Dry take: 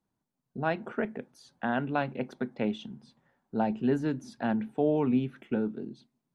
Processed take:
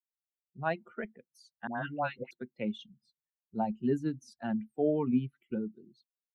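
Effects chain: expander on every frequency bin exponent 2; 1.67–2.31 s: phase dispersion highs, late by 106 ms, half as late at 940 Hz

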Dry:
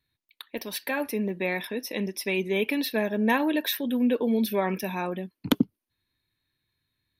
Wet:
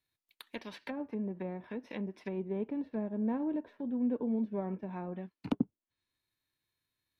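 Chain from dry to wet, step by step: formants flattened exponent 0.6; low-pass that closes with the level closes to 590 Hz, closed at -25.5 dBFS; trim -7.5 dB

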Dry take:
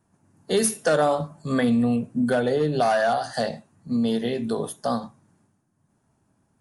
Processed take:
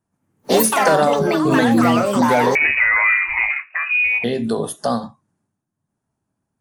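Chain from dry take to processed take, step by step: in parallel at +2.5 dB: compression, threshold -34 dBFS, peak gain reduction 16 dB; on the sum: ever faster or slower copies 120 ms, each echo +5 st, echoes 3; 2.55–4.24 s: frequency inversion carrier 2.7 kHz; spectral noise reduction 19 dB; trim +2.5 dB

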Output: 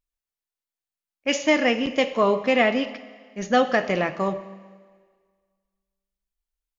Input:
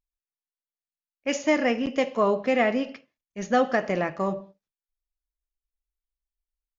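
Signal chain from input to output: dynamic bell 3.3 kHz, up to +7 dB, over -45 dBFS, Q 1.3; Schroeder reverb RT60 1.7 s, combs from 28 ms, DRR 14.5 dB; trim +2 dB

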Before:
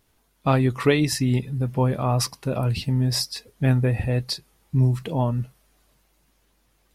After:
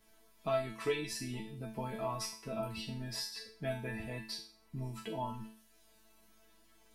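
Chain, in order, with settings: chord resonator A3 fifth, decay 0.42 s; three bands compressed up and down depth 40%; trim +6.5 dB

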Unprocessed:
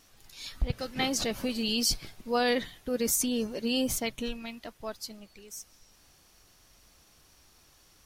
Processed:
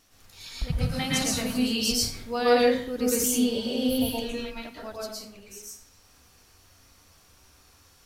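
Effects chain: 0.68–1.58 s: fifteen-band graphic EQ 160 Hz +10 dB, 400 Hz -9 dB, 10 kHz +8 dB; 3.32–4.09 s: spectral replace 960–9800 Hz before; reverberation RT60 0.55 s, pre-delay 102 ms, DRR -5.5 dB; trim -2.5 dB

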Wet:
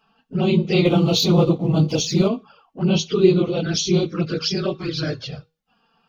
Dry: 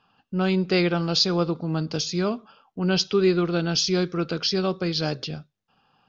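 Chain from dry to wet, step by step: phase randomisation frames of 50 ms; 0.85–2.28 s: waveshaping leveller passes 1; 4.58–5.32 s: graphic EQ with 31 bands 200 Hz -11 dB, 800 Hz -4 dB, 5 kHz -4 dB; touch-sensitive flanger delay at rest 4.6 ms, full sweep at -20.5 dBFS; feedback comb 160 Hz, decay 0.34 s, harmonics odd, mix 40%; trim +8.5 dB

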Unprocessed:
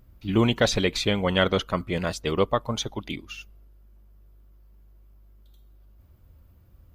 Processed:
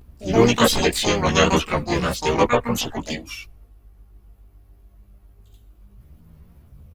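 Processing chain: harmony voices -3 st -2 dB, +4 st -12 dB, +12 st -2 dB; chorus voices 4, 0.57 Hz, delay 15 ms, depth 2.5 ms; trim +4.5 dB

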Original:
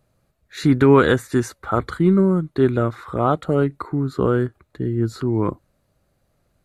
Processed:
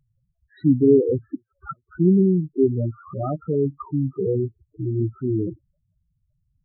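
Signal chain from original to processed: median filter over 15 samples; 1.35–1.98 s: inverted gate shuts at -17 dBFS, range -41 dB; loudest bins only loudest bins 4

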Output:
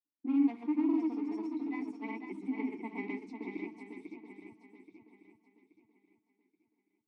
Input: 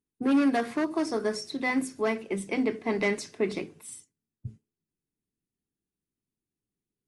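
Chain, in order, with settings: granulator 100 ms, pitch spread up and down by 0 st; vowel filter u; shuffle delay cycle 828 ms, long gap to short 1.5:1, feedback 33%, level -6.5 dB; trim +1 dB

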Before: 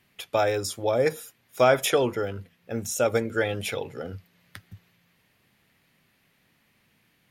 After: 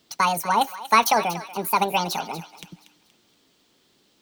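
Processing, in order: speed mistake 45 rpm record played at 78 rpm; thinning echo 237 ms, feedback 40%, high-pass 1.2 kHz, level -12 dB; trim +3 dB

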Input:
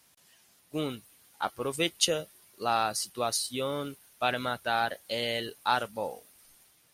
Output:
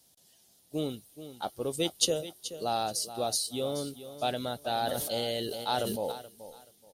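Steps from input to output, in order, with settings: high-order bell 1.6 kHz -11.5 dB; feedback delay 428 ms, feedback 25%, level -13 dB; 4.69–6.12 s: decay stretcher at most 25 dB/s

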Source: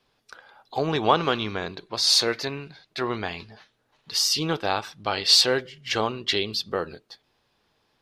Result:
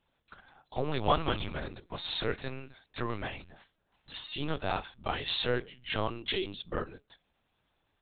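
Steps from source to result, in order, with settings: frequency shift -24 Hz; LPC vocoder at 8 kHz pitch kept; trim -6.5 dB

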